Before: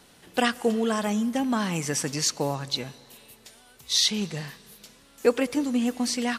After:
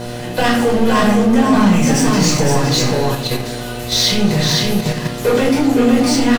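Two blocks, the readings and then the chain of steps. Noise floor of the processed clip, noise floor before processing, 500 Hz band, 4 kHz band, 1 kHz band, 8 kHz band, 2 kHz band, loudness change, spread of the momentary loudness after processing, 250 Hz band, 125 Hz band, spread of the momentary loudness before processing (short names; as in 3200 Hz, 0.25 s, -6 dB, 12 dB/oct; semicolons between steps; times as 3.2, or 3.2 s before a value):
-26 dBFS, -56 dBFS, +11.5 dB, +10.0 dB, +13.0 dB, +8.5 dB, +11.5 dB, +11.5 dB, 8 LU, +13.5 dB, +18.0 dB, 8 LU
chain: power-law curve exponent 0.5; on a send: echo 0.513 s -3.5 dB; on the sum: shoebox room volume 690 m³, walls furnished, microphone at 5 m; buzz 120 Hz, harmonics 6, -23 dBFS -2 dB/oct; high shelf 6900 Hz -6 dB; in parallel at -1 dB: level quantiser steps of 16 dB; on the sum: gain -6.5 dB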